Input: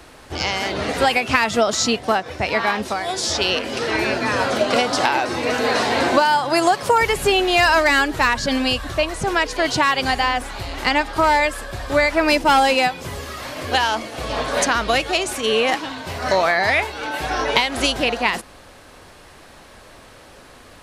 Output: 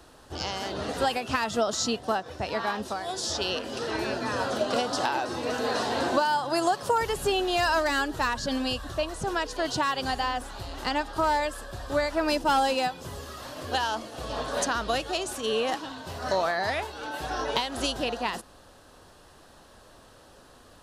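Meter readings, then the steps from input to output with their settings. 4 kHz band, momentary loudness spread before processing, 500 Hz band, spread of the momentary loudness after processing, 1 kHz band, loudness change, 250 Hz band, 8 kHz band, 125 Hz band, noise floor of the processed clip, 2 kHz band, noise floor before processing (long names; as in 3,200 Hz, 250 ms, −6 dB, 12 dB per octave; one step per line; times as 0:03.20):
−9.5 dB, 9 LU, −8.0 dB, 9 LU, −8.5 dB, −9.5 dB, −8.0 dB, −8.0 dB, −8.0 dB, −53 dBFS, −12.0 dB, −45 dBFS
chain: parametric band 2,200 Hz −12 dB 0.38 octaves
level −8 dB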